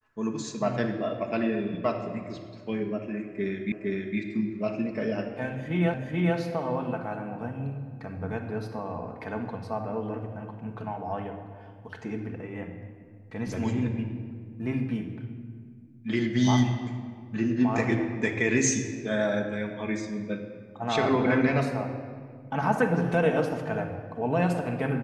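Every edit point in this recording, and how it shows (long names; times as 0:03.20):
0:03.72: the same again, the last 0.46 s
0:05.94: the same again, the last 0.43 s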